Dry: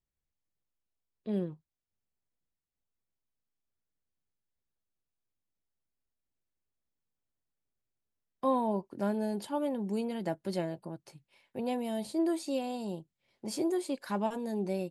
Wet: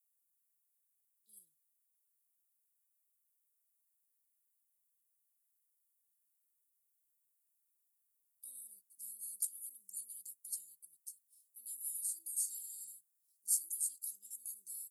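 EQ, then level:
inverse Chebyshev high-pass filter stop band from 2,300 Hz, stop band 70 dB
+17.5 dB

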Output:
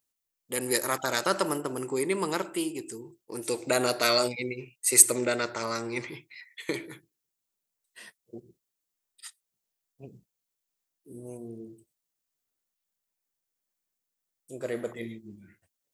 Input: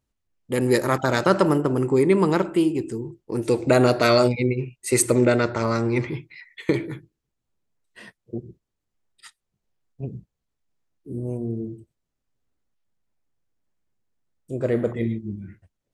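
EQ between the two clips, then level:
RIAA equalisation recording
−6.5 dB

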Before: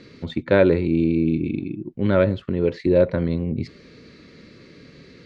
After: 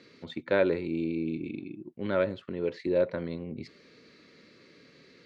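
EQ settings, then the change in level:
high-pass filter 390 Hz 6 dB per octave
−6.5 dB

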